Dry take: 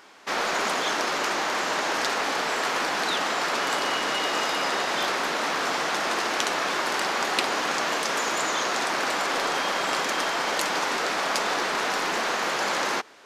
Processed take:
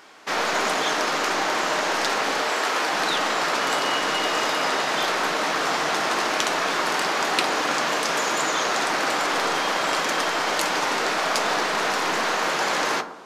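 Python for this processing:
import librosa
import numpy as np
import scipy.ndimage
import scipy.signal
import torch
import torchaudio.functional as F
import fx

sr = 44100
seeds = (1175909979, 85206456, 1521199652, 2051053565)

y = fx.highpass(x, sr, hz=270.0, slope=12, at=(2.38, 2.92))
y = fx.echo_bbd(y, sr, ms=109, stages=1024, feedback_pct=48, wet_db=-12)
y = fx.room_shoebox(y, sr, seeds[0], volume_m3=200.0, walls='furnished', distance_m=0.51)
y = F.gain(torch.from_numpy(y), 2.0).numpy()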